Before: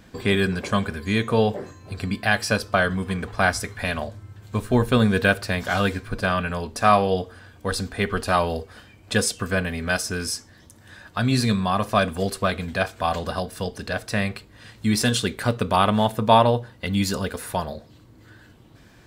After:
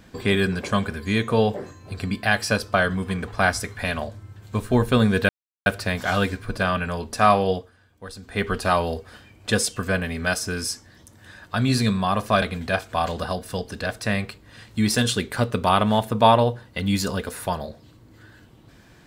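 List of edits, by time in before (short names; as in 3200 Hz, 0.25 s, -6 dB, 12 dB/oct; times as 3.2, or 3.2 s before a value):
5.29 insert silence 0.37 s
7.14–8.05 dip -12.5 dB, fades 0.20 s
12.05–12.49 cut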